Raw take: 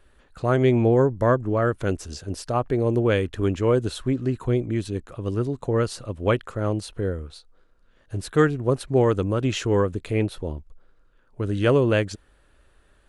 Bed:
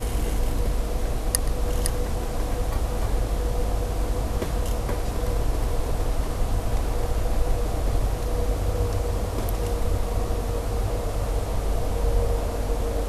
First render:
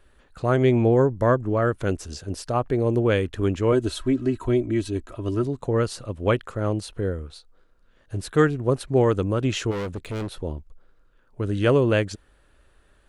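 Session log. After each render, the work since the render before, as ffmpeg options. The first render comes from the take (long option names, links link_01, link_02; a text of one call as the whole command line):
ffmpeg -i in.wav -filter_complex "[0:a]asettb=1/sr,asplit=3[link_01][link_02][link_03];[link_01]atrim=end=3.724[link_04];[link_02]atrim=start=3.72:end=5.44,asetpts=PTS-STARTPTS,afade=type=in:duration=0.004:curve=qsin,afade=type=out:start_time=1.716:duration=0.004:curve=qsin,aecho=1:1:3.1:0.63,atrim=end_sample=75852[link_05];[link_03]atrim=start=5.436[link_06];[link_04][link_05]acrossfade=duration=0.004:curve1=hsin:curve2=qsin[link_07];[link_07][link_06]acrossfade=duration=0.004:curve1=qsin:curve2=hsin,asplit=3[link_08][link_09][link_10];[link_08]afade=type=out:start_time=9.7:duration=0.02[link_11];[link_09]volume=26.5dB,asoftclip=hard,volume=-26.5dB,afade=type=in:start_time=9.7:duration=0.02,afade=type=out:start_time=10.35:duration=0.02[link_12];[link_10]afade=type=in:start_time=10.35:duration=0.02[link_13];[link_11][link_12][link_13]amix=inputs=3:normalize=0" out.wav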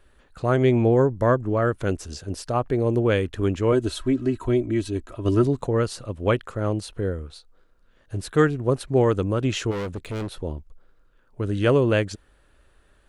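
ffmpeg -i in.wav -filter_complex "[0:a]asettb=1/sr,asplit=3[link_01][link_02][link_03];[link_01]atrim=end=5.254[link_04];[link_02]atrim=start=5.25:end=5.67,asetpts=PTS-STARTPTS,afade=type=in:duration=0.004:curve=qsin,afade=type=out:start_time=0.416:duration=0.004:curve=qsin,acontrast=32[link_05];[link_03]atrim=start=5.666[link_06];[link_04][link_05]acrossfade=duration=0.004:curve1=hsin:curve2=qsin[link_07];[link_07][link_06]acrossfade=duration=0.004:curve1=qsin:curve2=hsin" out.wav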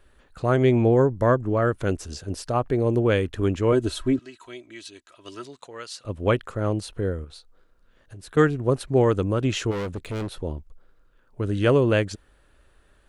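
ffmpeg -i in.wav -filter_complex "[0:a]asettb=1/sr,asplit=3[link_01][link_02][link_03];[link_01]atrim=end=4.194[link_04];[link_02]atrim=start=4.19:end=6.05,asetpts=PTS-STARTPTS,afade=type=in:duration=0.004:curve=qsin,afade=type=out:start_time=1.856:duration=0.004:curve=qsin,bandpass=frequency=4400:width_type=q:width=0.74[link_05];[link_03]atrim=start=6.046[link_06];[link_04][link_05]acrossfade=duration=0.004:curve1=hsin:curve2=qsin[link_07];[link_07][link_06]acrossfade=duration=0.004:curve1=qsin:curve2=hsin,asettb=1/sr,asplit=3[link_08][link_09][link_10];[link_08]atrim=end=7.244[link_11];[link_09]atrim=start=7.24:end=8.37,asetpts=PTS-STARTPTS,afade=type=in:duration=0.004:curve=qsin,afade=type=out:start_time=1.126:duration=0.004:curve=qsin,acompressor=threshold=-39dB:ratio=6:attack=3.2:release=140:knee=1:detection=peak[link_12];[link_10]atrim=start=8.366[link_13];[link_11][link_12]acrossfade=duration=0.004:curve1=hsin:curve2=qsin[link_14];[link_14][link_13]acrossfade=duration=0.004:curve1=qsin:curve2=hsin" out.wav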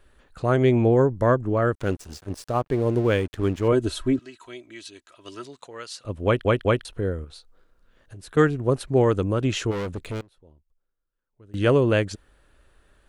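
ffmpeg -i in.wav -filter_complex "[0:a]asettb=1/sr,asplit=3[link_01][link_02][link_03];[link_01]atrim=end=1.754[link_04];[link_02]atrim=start=1.75:end=3.68,asetpts=PTS-STARTPTS,afade=type=in:duration=0.004:curve=qsin,afade=type=out:start_time=1.926:duration=0.004:curve=qsin,aeval=exprs='sgn(val(0))*max(abs(val(0))-0.00891,0)':channel_layout=same[link_05];[link_03]atrim=start=3.676[link_06];[link_04][link_05]acrossfade=duration=0.004:curve1=hsin:curve2=qsin[link_07];[link_07][link_06]acrossfade=duration=0.004:curve1=qsin:curve2=hsin,asplit=6[link_08][link_09][link_10][link_11][link_12][link_13];[link_08]atrim=end=6.452[link_14];[link_09]atrim=start=6.248:end=6.452[link_15];[link_10]atrim=start=6.248:end=6.452[link_16];[link_11]atrim=start=6.848:end=10.21,asetpts=PTS-STARTPTS,afade=type=out:start_time=3.222:duration=0.14:curve=log:silence=0.0630957[link_17];[link_12]atrim=start=10.21:end=11.54,asetpts=PTS-STARTPTS,volume=-24dB[link_18];[link_13]atrim=start=11.54,asetpts=PTS-STARTPTS,afade=type=in:duration=0.14:curve=log:silence=0.0630957[link_19];[link_14][link_15]acrossfade=duration=0.004:curve1=hsin:curve2=hsin[link_20];[link_20][link_16]acrossfade=duration=0.004:curve1=hsin:curve2=hsin[link_21];[link_17][link_18][link_19]concat=n=3:v=0:a=1[link_22];[link_21][link_22]acrossfade=duration=0.004:curve1=hsin:curve2=hsin" out.wav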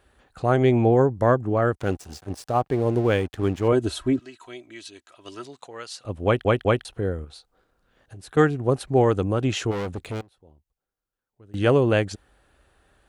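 ffmpeg -i in.wav -af "highpass=45,equalizer=frequency=770:width=7.1:gain=8.5" out.wav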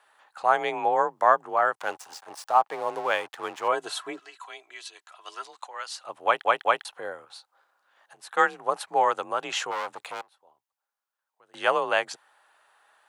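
ffmpeg -i in.wav -af "afreqshift=37,highpass=frequency=930:width_type=q:width=2.1" out.wav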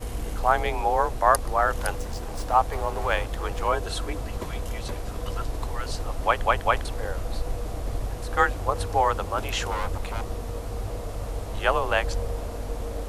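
ffmpeg -i in.wav -i bed.wav -filter_complex "[1:a]volume=-6dB[link_01];[0:a][link_01]amix=inputs=2:normalize=0" out.wav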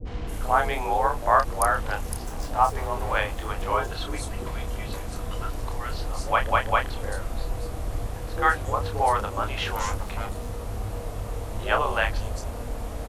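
ffmpeg -i in.wav -filter_complex "[0:a]asplit=2[link_01][link_02];[link_02]adelay=29,volume=-6dB[link_03];[link_01][link_03]amix=inputs=2:normalize=0,acrossover=split=470|4900[link_04][link_05][link_06];[link_05]adelay=50[link_07];[link_06]adelay=270[link_08];[link_04][link_07][link_08]amix=inputs=3:normalize=0" out.wav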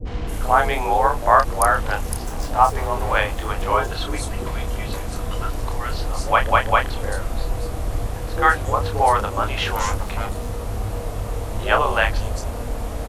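ffmpeg -i in.wav -af "volume=5.5dB,alimiter=limit=-2dB:level=0:latency=1" out.wav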